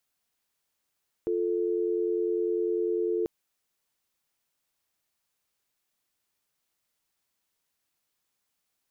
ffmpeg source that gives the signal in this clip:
-f lavfi -i "aevalsrc='0.0422*(sin(2*PI*350*t)+sin(2*PI*440*t))':d=1.99:s=44100"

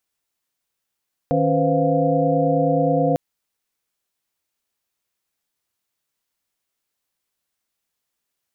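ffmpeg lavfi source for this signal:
-f lavfi -i "aevalsrc='0.0794*(sin(2*PI*155.56*t)+sin(2*PI*277.18*t)+sin(2*PI*493.88*t)+sin(2*PI*523.25*t)+sin(2*PI*698.46*t))':d=1.85:s=44100"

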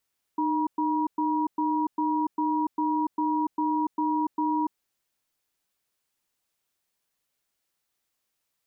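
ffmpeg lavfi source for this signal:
-f lavfi -i "aevalsrc='0.0531*(sin(2*PI*306*t)+sin(2*PI*958*t))*clip(min(mod(t,0.4),0.29-mod(t,0.4))/0.005,0,1)':d=4.4:s=44100"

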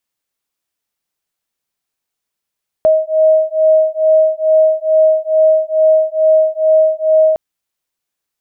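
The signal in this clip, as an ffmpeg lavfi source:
-f lavfi -i "aevalsrc='0.266*(sin(2*PI*629*t)+sin(2*PI*631.3*t))':d=4.51:s=44100"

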